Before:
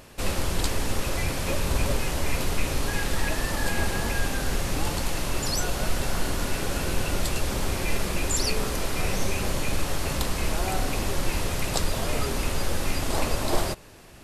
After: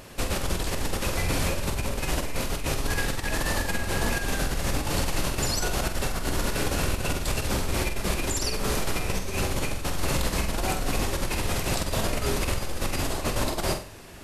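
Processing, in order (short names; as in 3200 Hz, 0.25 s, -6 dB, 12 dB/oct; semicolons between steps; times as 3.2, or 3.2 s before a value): negative-ratio compressor -27 dBFS, ratio -1; on a send: flutter echo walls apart 8 m, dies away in 0.39 s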